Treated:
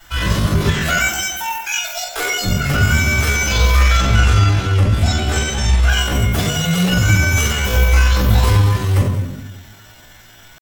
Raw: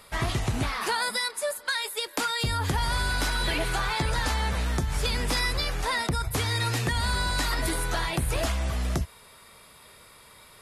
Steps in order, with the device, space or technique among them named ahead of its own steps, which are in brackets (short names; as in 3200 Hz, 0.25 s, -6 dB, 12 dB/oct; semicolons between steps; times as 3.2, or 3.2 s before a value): 3.97–5.9 air absorption 97 m; echo with dull and thin repeats by turns 0.1 s, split 900 Hz, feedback 53%, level -8 dB; shoebox room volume 120 m³, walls mixed, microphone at 4.4 m; chipmunk voice (pitch shift +7.5 st); gain -6 dB